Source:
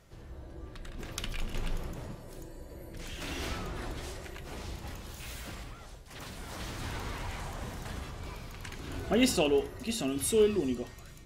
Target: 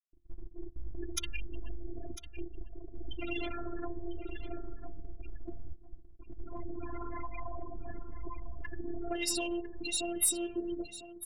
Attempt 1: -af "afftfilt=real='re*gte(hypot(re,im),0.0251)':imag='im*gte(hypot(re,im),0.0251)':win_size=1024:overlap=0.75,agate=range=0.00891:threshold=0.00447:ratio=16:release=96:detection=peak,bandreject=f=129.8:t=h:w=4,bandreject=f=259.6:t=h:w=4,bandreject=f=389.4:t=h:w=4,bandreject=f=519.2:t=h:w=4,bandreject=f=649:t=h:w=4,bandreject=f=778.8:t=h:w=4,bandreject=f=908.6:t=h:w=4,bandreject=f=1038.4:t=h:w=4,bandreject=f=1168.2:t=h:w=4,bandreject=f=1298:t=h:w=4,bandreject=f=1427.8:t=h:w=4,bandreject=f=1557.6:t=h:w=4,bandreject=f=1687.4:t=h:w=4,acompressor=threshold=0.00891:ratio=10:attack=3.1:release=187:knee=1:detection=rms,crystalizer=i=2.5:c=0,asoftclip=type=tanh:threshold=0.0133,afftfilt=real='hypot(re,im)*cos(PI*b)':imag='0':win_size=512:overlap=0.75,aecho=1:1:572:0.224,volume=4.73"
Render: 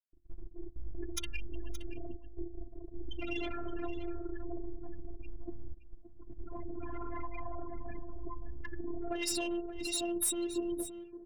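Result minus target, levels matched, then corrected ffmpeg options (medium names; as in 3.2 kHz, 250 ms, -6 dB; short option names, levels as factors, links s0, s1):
echo 428 ms early; saturation: distortion +7 dB
-af "afftfilt=real='re*gte(hypot(re,im),0.0251)':imag='im*gte(hypot(re,im),0.0251)':win_size=1024:overlap=0.75,agate=range=0.00891:threshold=0.00447:ratio=16:release=96:detection=peak,bandreject=f=129.8:t=h:w=4,bandreject=f=259.6:t=h:w=4,bandreject=f=389.4:t=h:w=4,bandreject=f=519.2:t=h:w=4,bandreject=f=649:t=h:w=4,bandreject=f=778.8:t=h:w=4,bandreject=f=908.6:t=h:w=4,bandreject=f=1038.4:t=h:w=4,bandreject=f=1168.2:t=h:w=4,bandreject=f=1298:t=h:w=4,bandreject=f=1427.8:t=h:w=4,bandreject=f=1557.6:t=h:w=4,bandreject=f=1687.4:t=h:w=4,acompressor=threshold=0.00891:ratio=10:attack=3.1:release=187:knee=1:detection=rms,crystalizer=i=2.5:c=0,asoftclip=type=tanh:threshold=0.0316,afftfilt=real='hypot(re,im)*cos(PI*b)':imag='0':win_size=512:overlap=0.75,aecho=1:1:1000:0.224,volume=4.73"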